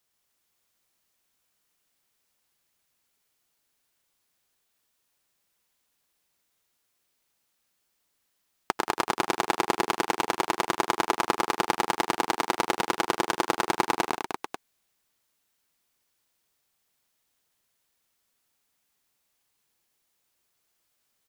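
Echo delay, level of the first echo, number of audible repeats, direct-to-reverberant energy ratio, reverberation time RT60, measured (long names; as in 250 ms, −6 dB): 91 ms, −14.5 dB, 5, no reverb audible, no reverb audible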